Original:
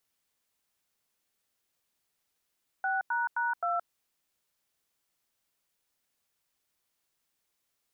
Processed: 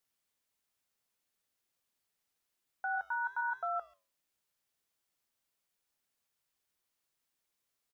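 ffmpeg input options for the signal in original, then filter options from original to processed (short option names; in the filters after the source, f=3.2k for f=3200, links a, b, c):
-f lavfi -i "aevalsrc='0.0335*clip(min(mod(t,0.262),0.171-mod(t,0.262))/0.002,0,1)*(eq(floor(t/0.262),0)*(sin(2*PI*770*mod(t,0.262))+sin(2*PI*1477*mod(t,0.262)))+eq(floor(t/0.262),1)*(sin(2*PI*941*mod(t,0.262))+sin(2*PI*1477*mod(t,0.262)))+eq(floor(t/0.262),2)*(sin(2*PI*941*mod(t,0.262))+sin(2*PI*1477*mod(t,0.262)))+eq(floor(t/0.262),3)*(sin(2*PI*697*mod(t,0.262))+sin(2*PI*1336*mod(t,0.262))))':d=1.048:s=44100"
-filter_complex "[0:a]asplit=2[a][b];[b]adelay=140,highpass=300,lowpass=3.4k,asoftclip=type=hard:threshold=-33.5dB,volume=-26dB[c];[a][c]amix=inputs=2:normalize=0,flanger=delay=7.6:depth=3.4:regen=82:speed=1.1:shape=sinusoidal"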